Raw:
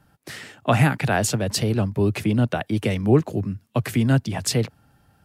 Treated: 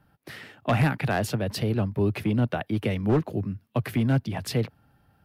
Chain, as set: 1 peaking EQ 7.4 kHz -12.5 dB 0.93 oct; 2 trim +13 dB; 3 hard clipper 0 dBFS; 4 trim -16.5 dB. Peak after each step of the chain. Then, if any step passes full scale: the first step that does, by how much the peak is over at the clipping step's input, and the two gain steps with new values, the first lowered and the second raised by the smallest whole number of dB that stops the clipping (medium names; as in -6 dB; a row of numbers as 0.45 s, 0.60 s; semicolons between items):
-5.0 dBFS, +8.0 dBFS, 0.0 dBFS, -16.5 dBFS; step 2, 8.0 dB; step 2 +5 dB, step 4 -8.5 dB